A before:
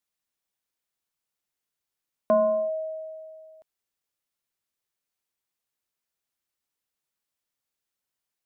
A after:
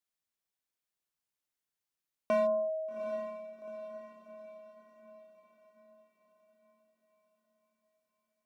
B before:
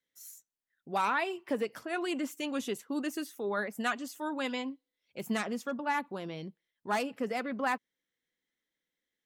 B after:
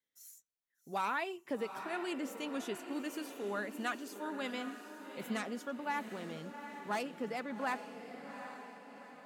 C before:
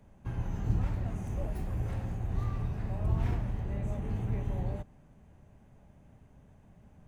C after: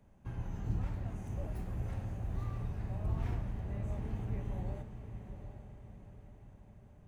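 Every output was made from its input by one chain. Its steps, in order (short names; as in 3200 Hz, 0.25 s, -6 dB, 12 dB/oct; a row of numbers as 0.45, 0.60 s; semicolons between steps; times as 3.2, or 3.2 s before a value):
hard clip -19.5 dBFS; diffused feedback echo 0.792 s, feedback 49%, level -9 dB; gain -5.5 dB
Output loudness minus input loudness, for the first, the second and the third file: -8.5, -5.5, -5.5 LU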